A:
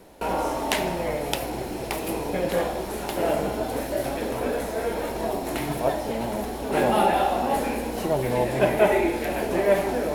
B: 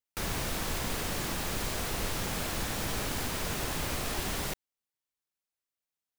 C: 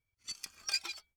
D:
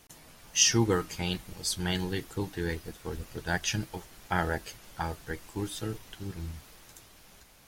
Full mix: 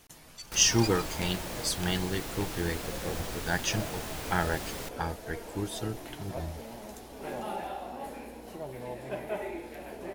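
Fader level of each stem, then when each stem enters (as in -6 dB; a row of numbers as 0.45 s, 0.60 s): -16.0 dB, -5.5 dB, -3.5 dB, 0.0 dB; 0.50 s, 0.35 s, 0.10 s, 0.00 s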